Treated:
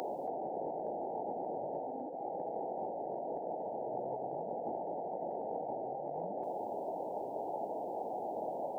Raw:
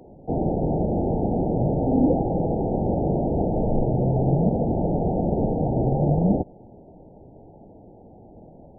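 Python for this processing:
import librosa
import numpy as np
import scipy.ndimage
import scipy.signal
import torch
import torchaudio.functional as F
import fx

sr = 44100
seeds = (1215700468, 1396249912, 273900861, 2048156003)

y = scipy.signal.sosfilt(scipy.signal.butter(2, 850.0, 'highpass', fs=sr, output='sos'), x)
y = fx.over_compress(y, sr, threshold_db=-47.0, ratio=-1.0)
y = F.gain(torch.from_numpy(y), 8.5).numpy()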